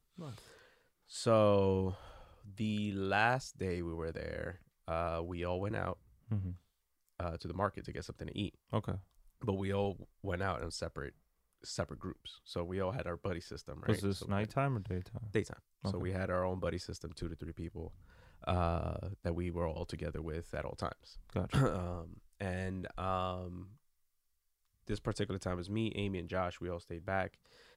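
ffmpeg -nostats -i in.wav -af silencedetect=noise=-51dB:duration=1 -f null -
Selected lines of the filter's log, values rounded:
silence_start: 23.73
silence_end: 24.87 | silence_duration: 1.14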